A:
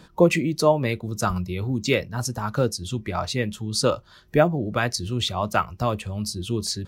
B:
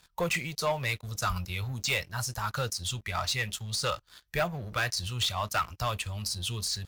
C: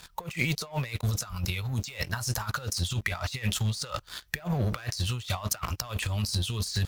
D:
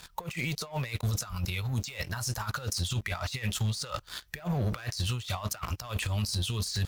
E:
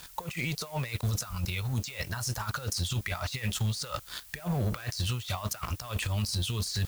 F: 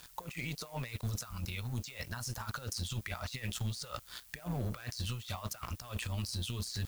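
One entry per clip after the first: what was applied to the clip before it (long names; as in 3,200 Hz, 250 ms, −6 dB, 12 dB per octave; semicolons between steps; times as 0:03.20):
de-essing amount 65%; guitar amp tone stack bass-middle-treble 10-0-10; leveller curve on the samples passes 3; level −5 dB
compressor whose output falls as the input rises −37 dBFS, ratio −0.5; level +7 dB
brickwall limiter −21.5 dBFS, peak gain reduction 9.5 dB
background noise blue −52 dBFS
amplitude modulation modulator 120 Hz, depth 35%; level −4.5 dB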